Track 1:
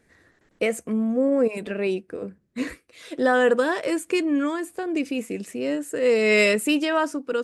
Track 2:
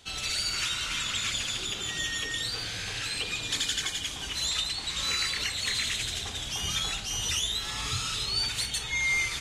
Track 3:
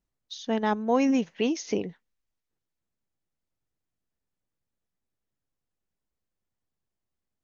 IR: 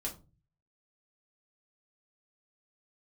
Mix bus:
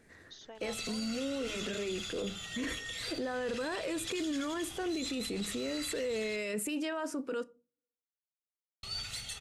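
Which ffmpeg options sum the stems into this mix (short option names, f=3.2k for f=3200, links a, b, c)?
-filter_complex "[0:a]acompressor=threshold=-27dB:ratio=6,volume=0dB,asplit=2[a][b];[b]volume=-15dB[c];[1:a]aecho=1:1:1.5:0.46,adelay=550,volume=-13dB,asplit=3[d][e][f];[d]atrim=end=6.36,asetpts=PTS-STARTPTS,afade=t=out:st=6.356:d=0.004:c=hsin[g];[e]atrim=start=6.36:end=8.83,asetpts=PTS-STARTPTS,volume=0[h];[f]atrim=start=8.83,asetpts=PTS-STARTPTS,afade=t=in:d=0.004:c=hsin[i];[g][h][i]concat=n=3:v=0:a=1,asplit=3[j][k][l];[k]volume=-7dB[m];[l]volume=-11.5dB[n];[2:a]highpass=510,acompressor=threshold=-36dB:ratio=4,volume=-10.5dB,asplit=2[o][p];[p]apad=whole_len=328048[q];[a][q]sidechaincompress=threshold=-50dB:ratio=8:attack=29:release=527[r];[3:a]atrim=start_sample=2205[s];[c][m]amix=inputs=2:normalize=0[t];[t][s]afir=irnorm=-1:irlink=0[u];[n]aecho=0:1:110:1[v];[r][j][o][u][v]amix=inputs=5:normalize=0,alimiter=level_in=4dB:limit=-24dB:level=0:latency=1:release=11,volume=-4dB"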